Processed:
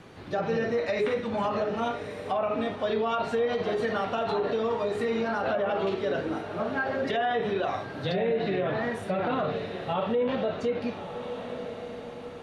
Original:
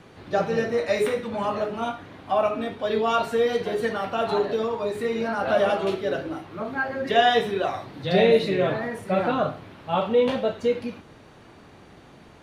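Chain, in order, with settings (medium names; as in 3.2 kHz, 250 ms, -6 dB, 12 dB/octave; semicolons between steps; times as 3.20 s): echo that smears into a reverb 1205 ms, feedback 45%, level -14 dB; low-pass that closes with the level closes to 2.1 kHz, closed at -15.5 dBFS; peak limiter -19.5 dBFS, peak gain reduction 12 dB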